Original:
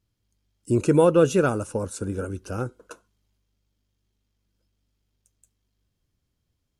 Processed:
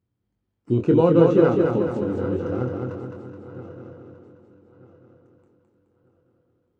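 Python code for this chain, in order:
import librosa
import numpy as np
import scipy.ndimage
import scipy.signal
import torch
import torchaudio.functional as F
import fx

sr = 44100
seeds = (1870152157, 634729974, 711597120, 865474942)

p1 = fx.reverse_delay_fb(x, sr, ms=621, feedback_pct=49, wet_db=-13.5)
p2 = fx.sample_hold(p1, sr, seeds[0], rate_hz=3400.0, jitter_pct=0)
p3 = p1 + F.gain(torch.from_numpy(p2), -10.5).numpy()
p4 = scipy.signal.sosfilt(scipy.signal.butter(2, 98.0, 'highpass', fs=sr, output='sos'), p3)
p5 = fx.spacing_loss(p4, sr, db_at_10k=37)
p6 = fx.notch(p5, sr, hz=600.0, q=12.0)
p7 = fx.doubler(p6, sr, ms=24.0, db=-6)
y = fx.echo_feedback(p7, sr, ms=212, feedback_pct=52, wet_db=-4)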